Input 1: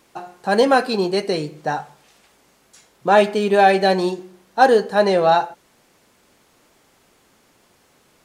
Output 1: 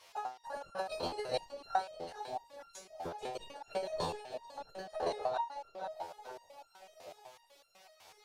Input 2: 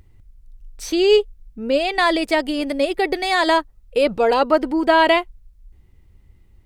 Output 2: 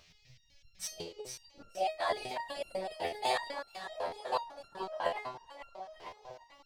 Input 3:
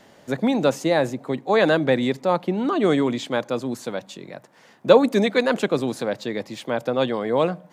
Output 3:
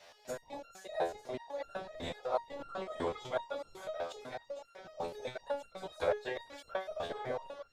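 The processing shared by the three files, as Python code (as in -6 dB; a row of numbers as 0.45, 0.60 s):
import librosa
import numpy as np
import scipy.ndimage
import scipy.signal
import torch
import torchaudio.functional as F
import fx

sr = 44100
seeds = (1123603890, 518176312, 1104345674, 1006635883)

y = fx.octave_divider(x, sr, octaves=1, level_db=-3.0)
y = fx.hum_notches(y, sr, base_hz=50, count=7)
y = fx.dynamic_eq(y, sr, hz=2200.0, q=0.95, threshold_db=-34.0, ratio=4.0, max_db=-6)
y = fx.transient(y, sr, attack_db=6, sustain_db=-10)
y = fx.over_compress(y, sr, threshold_db=-20.0, ratio=-0.5)
y = fx.whisperise(y, sr, seeds[0])
y = fx.dmg_noise_band(y, sr, seeds[1], low_hz=1900.0, high_hz=5800.0, level_db=-54.0)
y = fx.low_shelf_res(y, sr, hz=420.0, db=-12.5, q=1.5)
y = fx.echo_split(y, sr, split_hz=840.0, low_ms=622, high_ms=448, feedback_pct=52, wet_db=-9.0)
y = fx.resonator_held(y, sr, hz=8.0, low_hz=85.0, high_hz=1400.0)
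y = y * 10.0 ** (-1.0 / 20.0)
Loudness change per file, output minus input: -23.0, -19.5, -18.5 LU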